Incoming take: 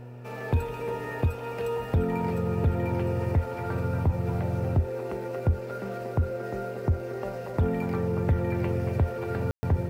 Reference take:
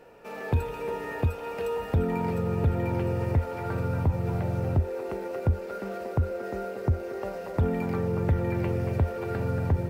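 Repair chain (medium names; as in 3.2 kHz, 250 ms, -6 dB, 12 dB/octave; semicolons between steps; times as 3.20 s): de-hum 122.1 Hz, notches 8; room tone fill 9.51–9.63 s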